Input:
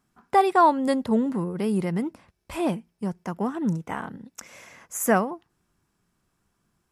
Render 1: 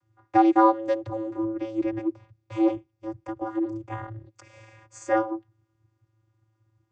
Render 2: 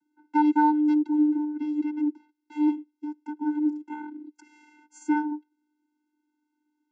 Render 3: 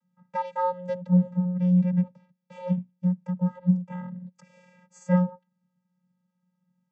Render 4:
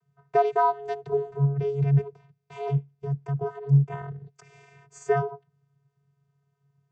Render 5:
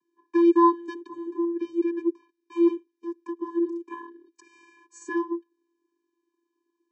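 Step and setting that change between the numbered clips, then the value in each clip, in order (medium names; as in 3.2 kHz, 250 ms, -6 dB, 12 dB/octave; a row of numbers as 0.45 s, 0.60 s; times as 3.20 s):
vocoder, frequency: 110 Hz, 300 Hz, 180 Hz, 140 Hz, 340 Hz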